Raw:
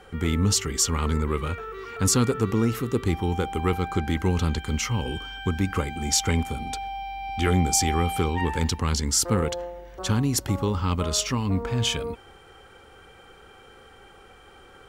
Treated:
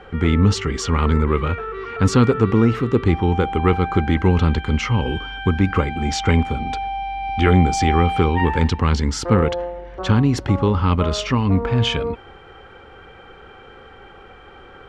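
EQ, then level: low-pass 2.9 kHz 12 dB/octave; +7.5 dB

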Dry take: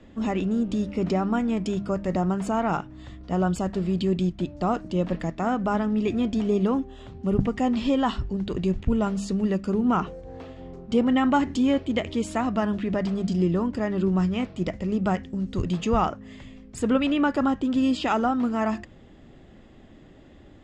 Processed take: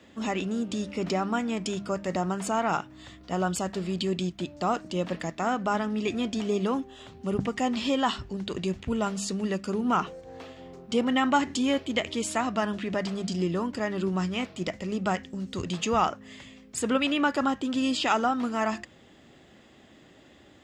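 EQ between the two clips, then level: high-pass 54 Hz; tilt EQ +2.5 dB/octave; 0.0 dB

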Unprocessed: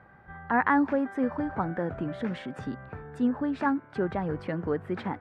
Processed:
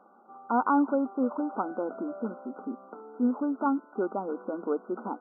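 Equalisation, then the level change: brick-wall FIR band-pass 200–1500 Hz; 0.0 dB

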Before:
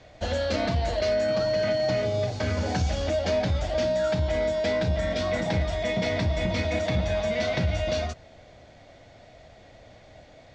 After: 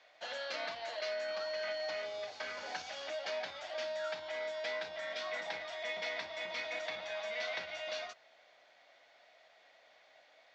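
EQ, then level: high-pass 1 kHz 12 dB/octave; distance through air 170 m; treble shelf 7.1 kHz +10.5 dB; -5.0 dB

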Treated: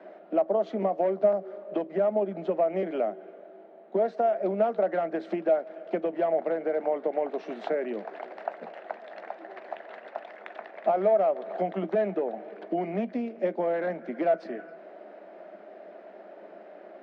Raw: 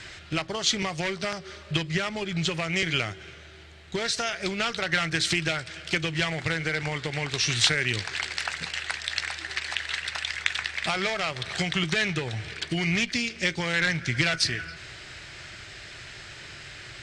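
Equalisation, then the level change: steep high-pass 190 Hz 96 dB/octave; resonant low-pass 640 Hz, resonance Q 4.9; 0.0 dB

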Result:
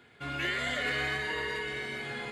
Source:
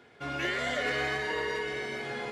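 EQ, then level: peaking EQ 560 Hz -8 dB 2.3 oct; peaking EQ 5.6 kHz -12.5 dB 0.27 oct; +2.5 dB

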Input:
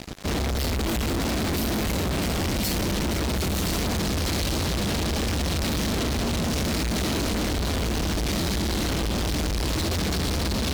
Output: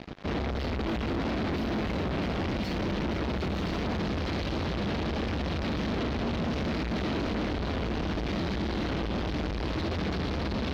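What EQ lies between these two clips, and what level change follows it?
distance through air 270 m; bass shelf 90 Hz -7 dB; -2.0 dB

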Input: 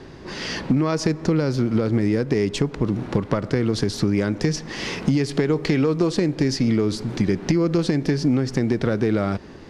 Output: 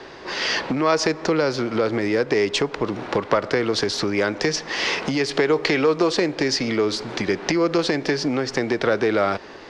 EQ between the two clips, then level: three-band isolator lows -18 dB, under 410 Hz, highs -16 dB, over 6.7 kHz; +7.5 dB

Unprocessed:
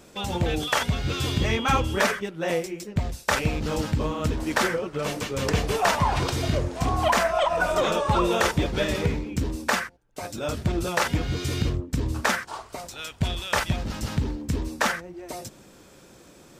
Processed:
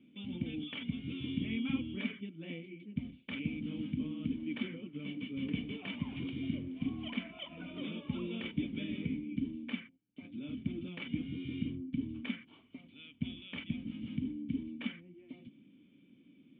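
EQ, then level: cascade formant filter i; high-pass 160 Hz 12 dB/octave; high-order bell 530 Hz -8 dB; +1.5 dB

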